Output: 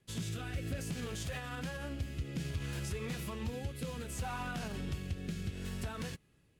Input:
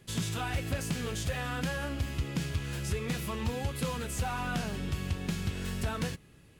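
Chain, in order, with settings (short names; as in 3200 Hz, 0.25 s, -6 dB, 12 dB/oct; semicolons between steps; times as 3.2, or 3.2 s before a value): rotary speaker horn 0.6 Hz; limiter -29.5 dBFS, peak gain reduction 8 dB; upward expander 1.5:1, over -57 dBFS; gain +1 dB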